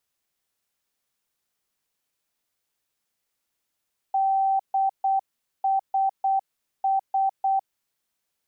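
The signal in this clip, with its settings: Morse "DSS" 8 wpm 776 Hz -19 dBFS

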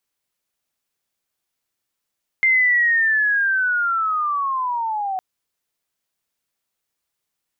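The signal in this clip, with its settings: sweep linear 2.1 kHz -> 740 Hz -12.5 dBFS -> -21.5 dBFS 2.76 s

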